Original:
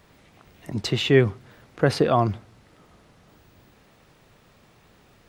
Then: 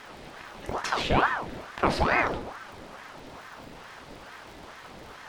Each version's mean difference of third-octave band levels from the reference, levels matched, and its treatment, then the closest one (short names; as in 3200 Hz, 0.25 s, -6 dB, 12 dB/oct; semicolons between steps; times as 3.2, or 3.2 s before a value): 11.5 dB: per-bin compression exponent 0.6; crackle 100/s -36 dBFS; shoebox room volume 130 m³, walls mixed, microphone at 0.5 m; ring modulator with a swept carrier 780 Hz, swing 85%, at 2.3 Hz; gain -5.5 dB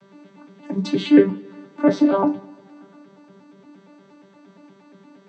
7.5 dB: arpeggiated vocoder bare fifth, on G3, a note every 0.117 s; notch 2000 Hz, Q 26; in parallel at +1 dB: compressor, threshold -33 dBFS, peak gain reduction 20.5 dB; on the sum: two-slope reverb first 0.23 s, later 1.8 s, from -27 dB, DRR 1 dB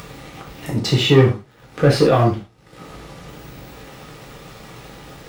5.0 dB: upward compressor, threshold -29 dBFS; sample leveller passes 2; bell 510 Hz +2.5 dB 1 oct; non-linear reverb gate 0.14 s falling, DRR -3 dB; gain -6 dB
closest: third